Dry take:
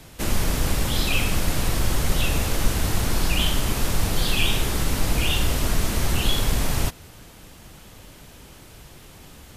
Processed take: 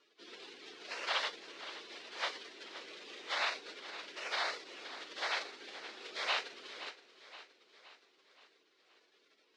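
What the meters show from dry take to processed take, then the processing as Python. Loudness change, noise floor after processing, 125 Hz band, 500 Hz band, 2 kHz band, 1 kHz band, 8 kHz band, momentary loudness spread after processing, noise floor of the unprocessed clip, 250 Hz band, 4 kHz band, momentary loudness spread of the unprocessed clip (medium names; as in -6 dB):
-15.5 dB, -72 dBFS, under -40 dB, -15.5 dB, -10.0 dB, -10.0 dB, -25.0 dB, 19 LU, -46 dBFS, -30.0 dB, -13.0 dB, 3 LU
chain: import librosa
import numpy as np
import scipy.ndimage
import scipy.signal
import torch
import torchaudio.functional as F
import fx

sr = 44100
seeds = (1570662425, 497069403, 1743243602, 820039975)

y = scipy.signal.sosfilt(scipy.signal.butter(4, 700.0, 'highpass', fs=sr, output='sos'), x)
y = fx.spec_gate(y, sr, threshold_db=-15, keep='weak')
y = scipy.signal.sosfilt(scipy.signal.butter(4, 4000.0, 'lowpass', fs=sr, output='sos'), y)
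y = fx.echo_feedback(y, sr, ms=521, feedback_pct=51, wet_db=-13.5)
y = y * librosa.db_to_amplitude(2.0)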